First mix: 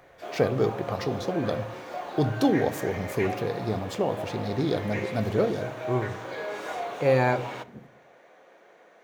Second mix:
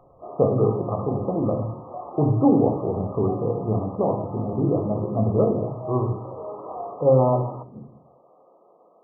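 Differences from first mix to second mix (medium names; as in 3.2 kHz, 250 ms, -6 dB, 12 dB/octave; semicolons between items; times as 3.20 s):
speech: send +11.5 dB; master: add brick-wall FIR low-pass 1.3 kHz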